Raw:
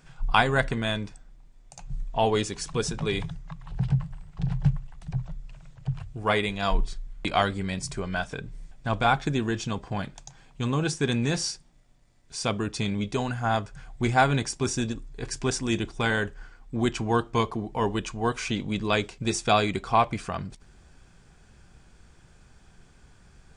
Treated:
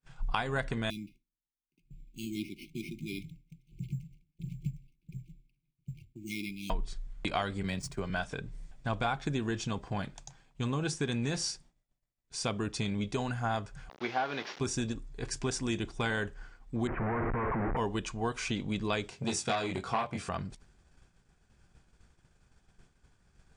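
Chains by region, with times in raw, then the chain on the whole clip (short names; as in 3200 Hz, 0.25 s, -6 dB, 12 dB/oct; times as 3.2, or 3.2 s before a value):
0.9–6.7 sample-rate reducer 7400 Hz + brick-wall FIR band-stop 380–2100 Hz + three-band isolator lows -16 dB, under 190 Hz, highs -13 dB, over 2300 Hz
7.63–8.1 median filter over 3 samples + expander -32 dBFS + three-band squash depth 40%
13.89–14.6 delta modulation 32 kbps, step -31.5 dBFS + BPF 390–4000 Hz + requantised 12-bit, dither none
16.87–17.77 infinite clipping + steep low-pass 2100 Hz 48 dB/oct
19.1–20.29 HPF 71 Hz 24 dB/oct + doubler 22 ms -2.5 dB + core saturation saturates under 1400 Hz
whole clip: expander -46 dBFS; compressor 6:1, threshold -24 dBFS; gain -3.5 dB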